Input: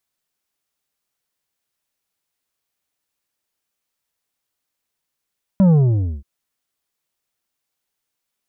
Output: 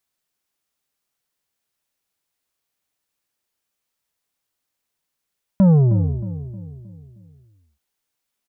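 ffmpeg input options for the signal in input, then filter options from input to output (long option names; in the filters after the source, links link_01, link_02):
-f lavfi -i "aevalsrc='0.316*clip((0.63-t)/0.53,0,1)*tanh(2.37*sin(2*PI*200*0.63/log(65/200)*(exp(log(65/200)*t/0.63)-1)))/tanh(2.37)':duration=0.63:sample_rate=44100"
-filter_complex "[0:a]asplit=2[link_01][link_02];[link_02]adelay=312,lowpass=frequency=890:poles=1,volume=-11.5dB,asplit=2[link_03][link_04];[link_04]adelay=312,lowpass=frequency=890:poles=1,volume=0.48,asplit=2[link_05][link_06];[link_06]adelay=312,lowpass=frequency=890:poles=1,volume=0.48,asplit=2[link_07][link_08];[link_08]adelay=312,lowpass=frequency=890:poles=1,volume=0.48,asplit=2[link_09][link_10];[link_10]adelay=312,lowpass=frequency=890:poles=1,volume=0.48[link_11];[link_01][link_03][link_05][link_07][link_09][link_11]amix=inputs=6:normalize=0"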